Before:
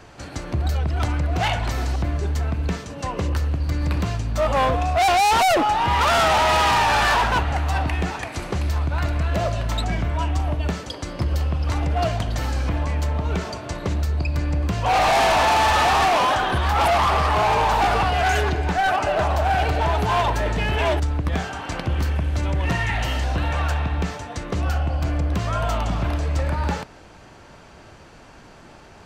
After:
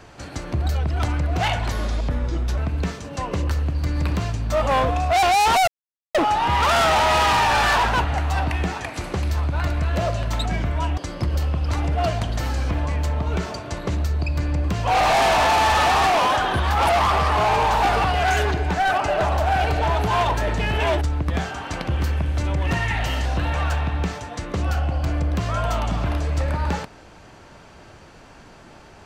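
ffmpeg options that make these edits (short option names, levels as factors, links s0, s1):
-filter_complex "[0:a]asplit=5[s0][s1][s2][s3][s4];[s0]atrim=end=1.724[s5];[s1]atrim=start=1.72:end=2.43,asetpts=PTS-STARTPTS,asetrate=36603,aresample=44100,atrim=end_sample=37724,asetpts=PTS-STARTPTS[s6];[s2]atrim=start=2.426:end=5.53,asetpts=PTS-STARTPTS,afade=t=out:st=3.1:d=0.004:c=hsin,apad=pad_dur=0.47[s7];[s3]atrim=start=5.53:end=10.362,asetpts=PTS-STARTPTS,afade=t=in:d=0.004:c=hsin[s8];[s4]atrim=start=10.958[s9];[s5][s6]acrossfade=d=0.004:c1=hsin:c2=hsin[s10];[s7][s8]concat=n=2:v=0:a=1[s11];[s10][s11]acrossfade=d=0.004:c1=hsin:c2=hsin[s12];[s12][s9]acrossfade=d=0.004:c1=hsin:c2=hsin"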